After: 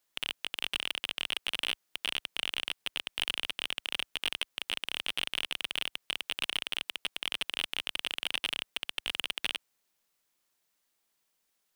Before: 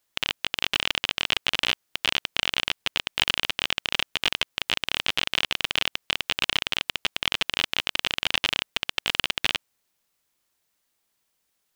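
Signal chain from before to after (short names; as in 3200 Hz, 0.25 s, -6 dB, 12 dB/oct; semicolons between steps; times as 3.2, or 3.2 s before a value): bell 67 Hz -9 dB 1.6 oct; soft clip -14.5 dBFS, distortion -10 dB; gain -3 dB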